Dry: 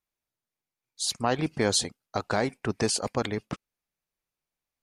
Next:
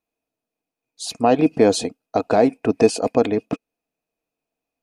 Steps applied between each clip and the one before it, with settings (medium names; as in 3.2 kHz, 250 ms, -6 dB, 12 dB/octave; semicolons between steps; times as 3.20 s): small resonant body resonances 290/460/650/2500 Hz, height 17 dB, ringing for 35 ms; trim -1.5 dB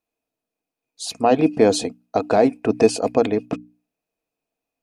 hum notches 60/120/180/240/300 Hz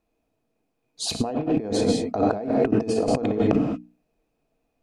tilt EQ -2.5 dB/octave; gated-style reverb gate 230 ms flat, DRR 6.5 dB; compressor with a negative ratio -24 dBFS, ratio -1